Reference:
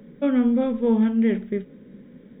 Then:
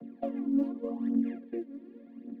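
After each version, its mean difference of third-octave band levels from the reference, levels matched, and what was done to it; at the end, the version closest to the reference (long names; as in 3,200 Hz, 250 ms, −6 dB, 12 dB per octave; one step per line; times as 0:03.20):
5.0 dB: channel vocoder with a chord as carrier minor triad, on A#3
downward compressor 3 to 1, threshold −34 dBFS, peak gain reduction 15.5 dB
phase shifter 0.87 Hz, delay 3.7 ms, feedback 69%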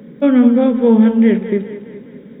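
1.5 dB: high-pass filter 240 Hz 6 dB per octave
low-shelf EQ 310 Hz +6.5 dB
on a send: echo with a time of its own for lows and highs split 340 Hz, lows 90 ms, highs 204 ms, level −11 dB
on the sum: level +8 dB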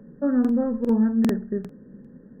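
3.0 dB: linear-phase brick-wall low-pass 1,900 Hz
low-shelf EQ 210 Hz +5.5 dB
regular buffer underruns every 0.40 s, samples 2,048, repeat, from 0:00.40
level −3 dB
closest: second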